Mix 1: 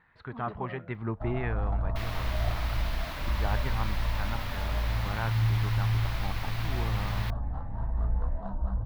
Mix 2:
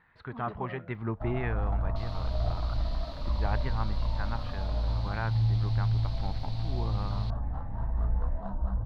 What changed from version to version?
second sound: add band-pass filter 4.3 kHz, Q 4.8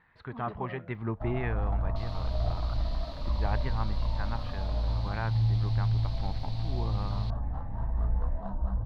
master: add peaking EQ 1.4 kHz -3 dB 0.24 oct

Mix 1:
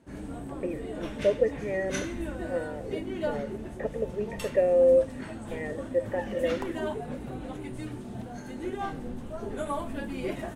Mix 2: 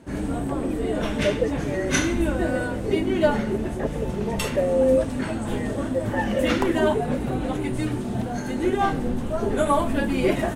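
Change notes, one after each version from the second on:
background +11.5 dB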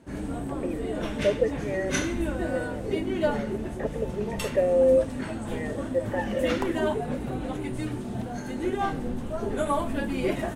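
background -5.5 dB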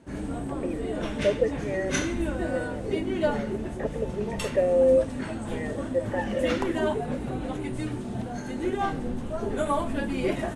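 master: add low-pass 11 kHz 24 dB/octave

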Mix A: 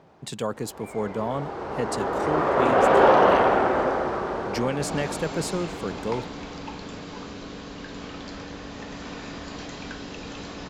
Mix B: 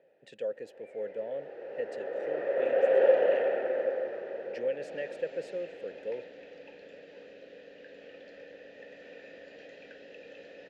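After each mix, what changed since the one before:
master: add vowel filter e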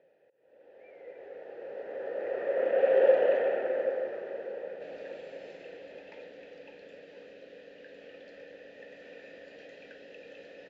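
speech: muted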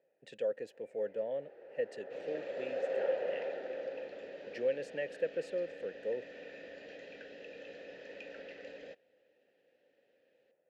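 speech: unmuted; first sound -11.0 dB; second sound: entry -2.70 s

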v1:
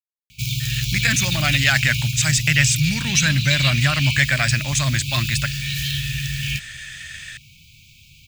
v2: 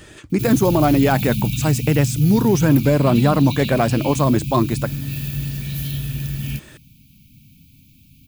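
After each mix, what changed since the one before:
speech: entry -0.60 s; master: remove FFT filter 130 Hz 0 dB, 420 Hz -27 dB, 610 Hz -11 dB, 970 Hz -13 dB, 1.8 kHz +13 dB, 7.8 kHz +10 dB, 11 kHz -3 dB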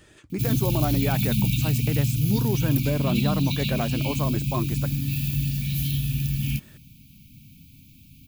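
speech -11.0 dB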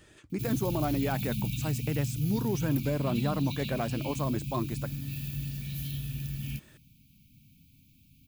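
speech -3.5 dB; background -10.0 dB

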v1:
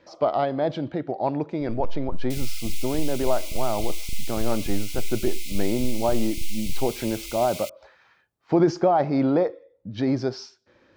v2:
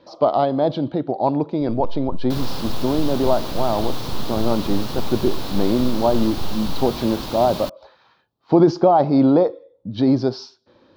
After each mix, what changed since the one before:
second sound: remove brick-wall FIR high-pass 2 kHz; master: add ten-band graphic EQ 125 Hz +4 dB, 250 Hz +6 dB, 500 Hz +3 dB, 1 kHz +7 dB, 2 kHz -8 dB, 4 kHz +11 dB, 8 kHz -9 dB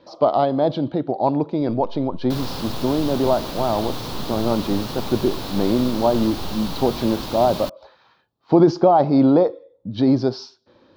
first sound -11.0 dB

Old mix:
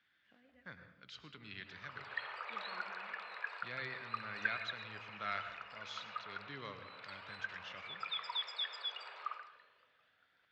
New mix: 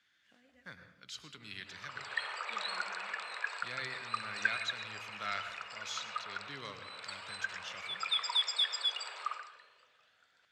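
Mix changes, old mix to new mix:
background +3.0 dB; master: remove distance through air 230 m

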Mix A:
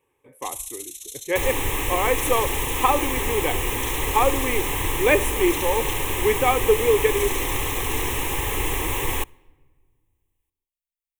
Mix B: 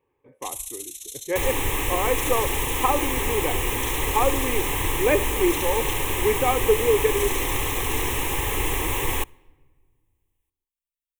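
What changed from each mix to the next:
speech: add tape spacing loss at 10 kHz 29 dB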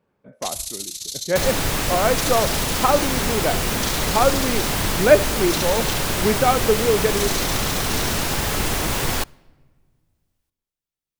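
first sound: remove amplifier tone stack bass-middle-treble 10-0-10; master: remove static phaser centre 960 Hz, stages 8

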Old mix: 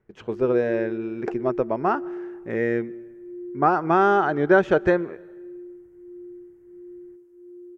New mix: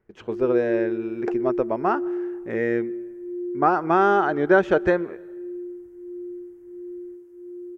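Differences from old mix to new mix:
background +6.0 dB; master: add peaking EQ 140 Hz -4.5 dB 0.67 oct

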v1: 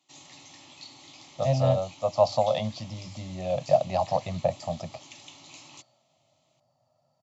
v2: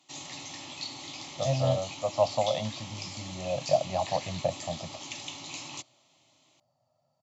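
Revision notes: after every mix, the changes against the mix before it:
speech -3.5 dB; background +8.0 dB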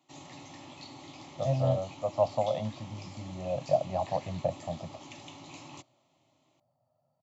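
master: add peaking EQ 5.6 kHz -13 dB 3 oct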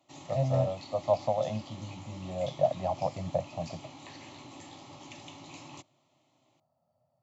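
speech: entry -1.10 s

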